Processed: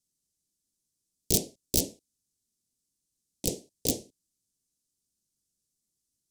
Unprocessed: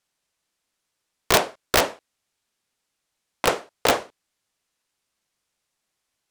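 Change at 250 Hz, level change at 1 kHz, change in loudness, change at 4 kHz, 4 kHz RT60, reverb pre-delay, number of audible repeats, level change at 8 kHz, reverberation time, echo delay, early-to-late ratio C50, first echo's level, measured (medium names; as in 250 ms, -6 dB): -2.5 dB, -28.5 dB, -7.0 dB, -9.5 dB, no reverb, no reverb, no echo, -0.5 dB, no reverb, no echo, no reverb, no echo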